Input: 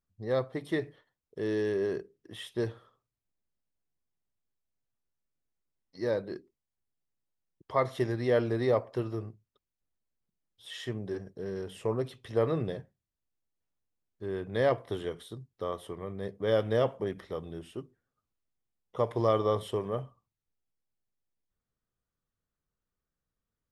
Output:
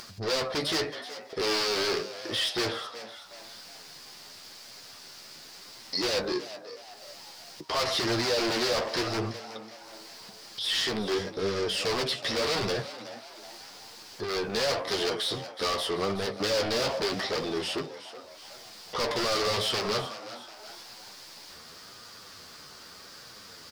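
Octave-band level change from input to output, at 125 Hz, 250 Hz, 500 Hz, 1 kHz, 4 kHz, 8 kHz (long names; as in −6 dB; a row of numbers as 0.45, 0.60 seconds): −3.5 dB, +1.0 dB, 0.0 dB, +5.0 dB, +19.0 dB, can't be measured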